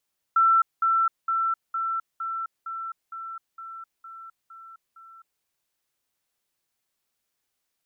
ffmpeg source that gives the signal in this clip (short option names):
-f lavfi -i "aevalsrc='pow(10,(-15.5-3*floor(t/0.46))/20)*sin(2*PI*1340*t)*clip(min(mod(t,0.46),0.26-mod(t,0.46))/0.005,0,1)':d=5.06:s=44100"